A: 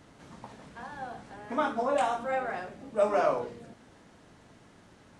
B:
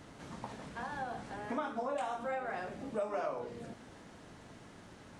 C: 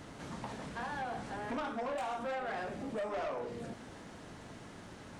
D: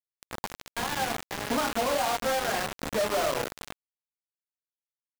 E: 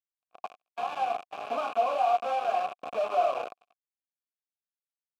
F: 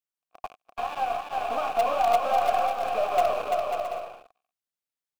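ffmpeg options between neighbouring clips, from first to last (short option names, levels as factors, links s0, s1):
-af "acompressor=threshold=0.0126:ratio=4,volume=1.33"
-af "asoftclip=type=tanh:threshold=0.0141,volume=1.58"
-af "acrusher=bits=5:mix=0:aa=0.000001,volume=2.24"
-filter_complex "[0:a]agate=range=0.02:threshold=0.0141:ratio=16:detection=peak,asplit=3[s0][s1][s2];[s0]bandpass=f=730:t=q:w=8,volume=1[s3];[s1]bandpass=f=1090:t=q:w=8,volume=0.501[s4];[s2]bandpass=f=2440:t=q:w=8,volume=0.355[s5];[s3][s4][s5]amix=inputs=3:normalize=0,volume=2.37"
-filter_complex "[0:a]asplit=2[s0][s1];[s1]acrusher=bits=4:dc=4:mix=0:aa=0.000001,volume=0.316[s2];[s0][s2]amix=inputs=2:normalize=0,aecho=1:1:340|544|666.4|739.8|783.9:0.631|0.398|0.251|0.158|0.1"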